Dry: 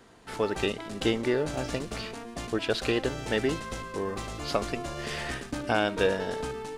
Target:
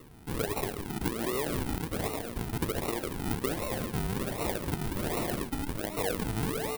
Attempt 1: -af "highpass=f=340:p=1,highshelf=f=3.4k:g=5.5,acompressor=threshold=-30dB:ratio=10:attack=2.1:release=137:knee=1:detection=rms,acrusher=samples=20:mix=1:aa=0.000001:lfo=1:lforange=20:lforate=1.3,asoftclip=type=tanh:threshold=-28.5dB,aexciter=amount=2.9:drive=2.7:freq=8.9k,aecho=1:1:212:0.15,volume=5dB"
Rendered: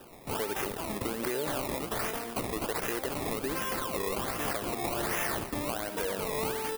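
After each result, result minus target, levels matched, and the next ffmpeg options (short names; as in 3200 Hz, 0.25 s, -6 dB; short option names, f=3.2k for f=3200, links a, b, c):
echo 68 ms late; decimation with a swept rate: distortion -14 dB; soft clip: distortion +12 dB
-af "highpass=f=340:p=1,highshelf=f=3.4k:g=5.5,acompressor=threshold=-30dB:ratio=10:attack=2.1:release=137:knee=1:detection=rms,acrusher=samples=20:mix=1:aa=0.000001:lfo=1:lforange=20:lforate=1.3,asoftclip=type=tanh:threshold=-28.5dB,aexciter=amount=2.9:drive=2.7:freq=8.9k,aecho=1:1:144:0.15,volume=5dB"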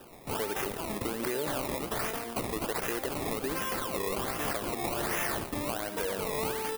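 decimation with a swept rate: distortion -14 dB; soft clip: distortion +12 dB
-af "highpass=f=340:p=1,highshelf=f=3.4k:g=5.5,acompressor=threshold=-30dB:ratio=10:attack=2.1:release=137:knee=1:detection=rms,acrusher=samples=54:mix=1:aa=0.000001:lfo=1:lforange=54:lforate=1.3,asoftclip=type=tanh:threshold=-28.5dB,aexciter=amount=2.9:drive=2.7:freq=8.9k,aecho=1:1:144:0.15,volume=5dB"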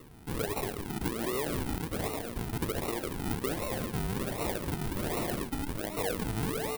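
soft clip: distortion +12 dB
-af "highpass=f=340:p=1,highshelf=f=3.4k:g=5.5,acompressor=threshold=-30dB:ratio=10:attack=2.1:release=137:knee=1:detection=rms,acrusher=samples=54:mix=1:aa=0.000001:lfo=1:lforange=54:lforate=1.3,asoftclip=type=tanh:threshold=-21dB,aexciter=amount=2.9:drive=2.7:freq=8.9k,aecho=1:1:144:0.15,volume=5dB"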